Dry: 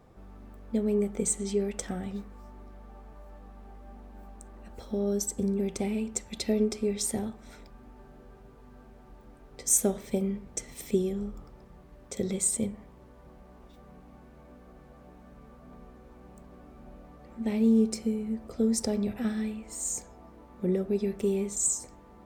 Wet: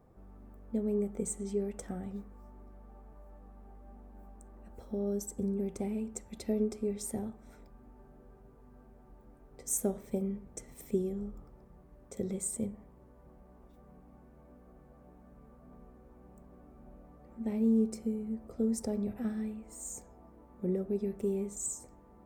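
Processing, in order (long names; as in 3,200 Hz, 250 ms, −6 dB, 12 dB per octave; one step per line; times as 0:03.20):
parametric band 3,700 Hz −11.5 dB 2.1 octaves
level −4.5 dB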